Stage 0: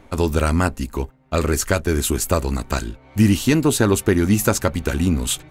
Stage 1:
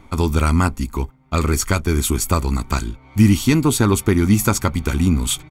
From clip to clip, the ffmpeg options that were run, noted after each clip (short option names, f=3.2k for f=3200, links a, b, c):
-af "aecho=1:1:0.9:0.51"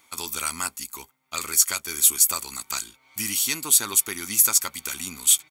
-af "aderivative,volume=5.5dB"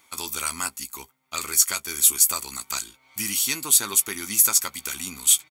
-filter_complex "[0:a]asplit=2[a][b];[b]adelay=15,volume=-12dB[c];[a][c]amix=inputs=2:normalize=0"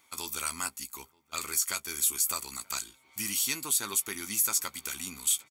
-filter_complex "[0:a]alimiter=limit=-9.5dB:level=0:latency=1:release=69,asplit=2[a][b];[b]adelay=932.9,volume=-25dB,highshelf=f=4k:g=-21[c];[a][c]amix=inputs=2:normalize=0,volume=-5.5dB"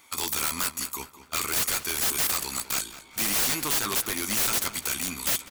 -filter_complex "[0:a]aeval=exprs='(mod(23.7*val(0)+1,2)-1)/23.7':c=same,asplit=2[a][b];[b]adelay=203,lowpass=f=4.1k:p=1,volume=-13dB,asplit=2[c][d];[d]adelay=203,lowpass=f=4.1k:p=1,volume=0.46,asplit=2[e][f];[f]adelay=203,lowpass=f=4.1k:p=1,volume=0.46,asplit=2[g][h];[h]adelay=203,lowpass=f=4.1k:p=1,volume=0.46,asplit=2[i][j];[j]adelay=203,lowpass=f=4.1k:p=1,volume=0.46[k];[a][c][e][g][i][k]amix=inputs=6:normalize=0,volume=8.5dB"